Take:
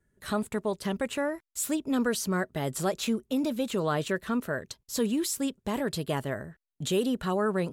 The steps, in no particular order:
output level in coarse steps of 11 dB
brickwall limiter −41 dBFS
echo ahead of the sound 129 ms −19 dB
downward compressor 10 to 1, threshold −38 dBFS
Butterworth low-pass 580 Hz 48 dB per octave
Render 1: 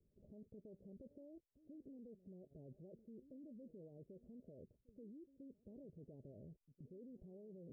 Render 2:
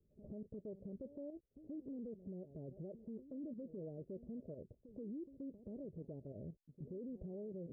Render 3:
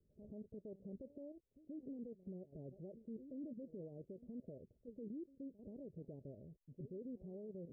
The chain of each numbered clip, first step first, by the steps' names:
downward compressor, then brickwall limiter, then echo ahead of the sound, then output level in coarse steps, then Butterworth low-pass
Butterworth low-pass, then output level in coarse steps, then downward compressor, then echo ahead of the sound, then brickwall limiter
echo ahead of the sound, then downward compressor, then output level in coarse steps, then brickwall limiter, then Butterworth low-pass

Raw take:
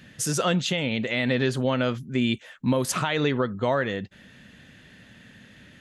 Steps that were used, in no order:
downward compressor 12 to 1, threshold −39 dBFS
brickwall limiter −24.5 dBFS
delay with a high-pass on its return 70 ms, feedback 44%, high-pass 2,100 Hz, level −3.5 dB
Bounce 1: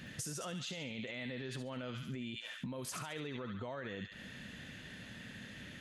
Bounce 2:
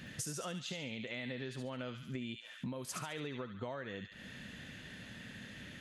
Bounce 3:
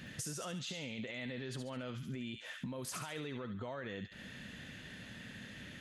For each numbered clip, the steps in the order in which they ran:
delay with a high-pass on its return, then brickwall limiter, then downward compressor
delay with a high-pass on its return, then downward compressor, then brickwall limiter
brickwall limiter, then delay with a high-pass on its return, then downward compressor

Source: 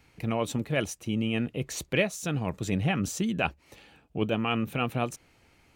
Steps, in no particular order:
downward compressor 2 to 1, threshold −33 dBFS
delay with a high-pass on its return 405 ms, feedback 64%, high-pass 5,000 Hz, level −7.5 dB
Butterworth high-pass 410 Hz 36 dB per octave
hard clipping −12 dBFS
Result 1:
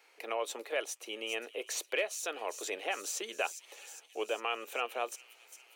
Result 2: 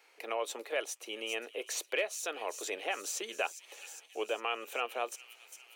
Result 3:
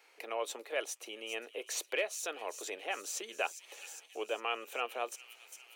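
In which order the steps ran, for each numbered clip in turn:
hard clipping, then Butterworth high-pass, then downward compressor, then delay with a high-pass on its return
delay with a high-pass on its return, then hard clipping, then Butterworth high-pass, then downward compressor
hard clipping, then delay with a high-pass on its return, then downward compressor, then Butterworth high-pass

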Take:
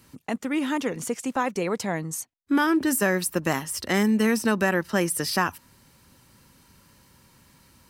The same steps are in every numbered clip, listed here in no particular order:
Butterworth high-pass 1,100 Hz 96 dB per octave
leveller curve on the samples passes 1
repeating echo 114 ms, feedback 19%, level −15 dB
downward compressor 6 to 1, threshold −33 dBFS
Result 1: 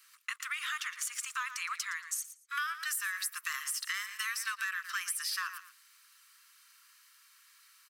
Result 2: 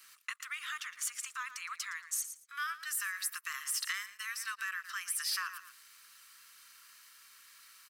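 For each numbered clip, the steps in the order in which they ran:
repeating echo, then leveller curve on the samples, then Butterworth high-pass, then downward compressor
repeating echo, then downward compressor, then Butterworth high-pass, then leveller curve on the samples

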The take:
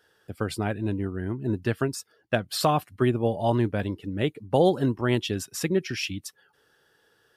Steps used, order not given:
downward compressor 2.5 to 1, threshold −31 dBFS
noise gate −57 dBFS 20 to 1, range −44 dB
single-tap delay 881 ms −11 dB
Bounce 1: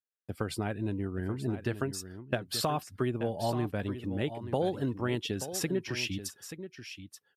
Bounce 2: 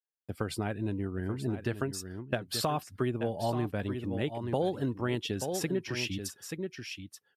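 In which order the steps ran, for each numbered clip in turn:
downward compressor, then noise gate, then single-tap delay
noise gate, then single-tap delay, then downward compressor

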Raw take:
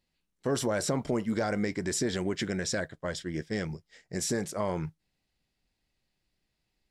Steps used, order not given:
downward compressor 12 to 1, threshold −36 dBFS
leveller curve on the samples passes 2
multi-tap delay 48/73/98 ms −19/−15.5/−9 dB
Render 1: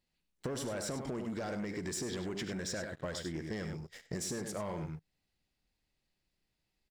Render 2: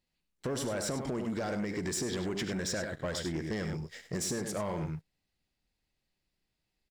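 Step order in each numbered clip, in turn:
multi-tap delay, then leveller curve on the samples, then downward compressor
multi-tap delay, then downward compressor, then leveller curve on the samples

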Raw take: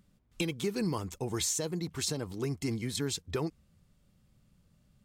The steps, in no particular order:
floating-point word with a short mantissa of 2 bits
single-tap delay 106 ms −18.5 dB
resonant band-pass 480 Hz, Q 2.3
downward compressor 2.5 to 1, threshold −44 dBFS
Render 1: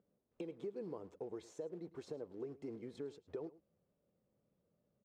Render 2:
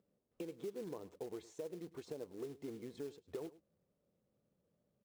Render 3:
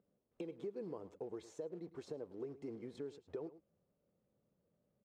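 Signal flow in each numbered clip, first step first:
floating-point word with a short mantissa, then resonant band-pass, then downward compressor, then single-tap delay
resonant band-pass, then downward compressor, then floating-point word with a short mantissa, then single-tap delay
single-tap delay, then floating-point word with a short mantissa, then resonant band-pass, then downward compressor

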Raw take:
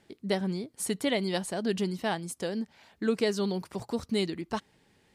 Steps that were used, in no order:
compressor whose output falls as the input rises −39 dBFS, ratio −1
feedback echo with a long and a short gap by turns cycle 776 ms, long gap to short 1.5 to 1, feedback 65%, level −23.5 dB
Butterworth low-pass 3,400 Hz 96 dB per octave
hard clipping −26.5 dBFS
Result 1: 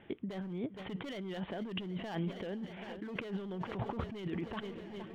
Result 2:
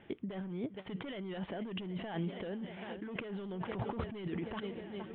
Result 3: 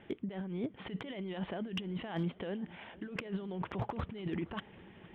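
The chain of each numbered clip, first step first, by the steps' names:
Butterworth low-pass, then hard clipping, then feedback echo with a long and a short gap by turns, then compressor whose output falls as the input rises
feedback echo with a long and a short gap by turns, then hard clipping, then compressor whose output falls as the input rises, then Butterworth low-pass
Butterworth low-pass, then compressor whose output falls as the input rises, then feedback echo with a long and a short gap by turns, then hard clipping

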